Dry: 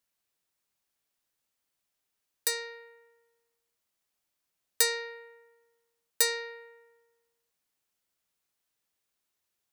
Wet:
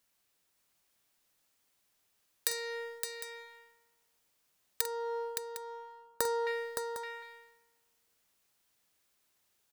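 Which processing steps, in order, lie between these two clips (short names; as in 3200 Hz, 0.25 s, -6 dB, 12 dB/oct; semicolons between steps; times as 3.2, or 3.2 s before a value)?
4.81–6.47 resonant high shelf 1600 Hz -12.5 dB, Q 3; compressor 16:1, threshold -41 dBFS, peak gain reduction 21.5 dB; sample leveller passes 1; tapped delay 47/566/756 ms -12.5/-6/-13.5 dB; gain +8 dB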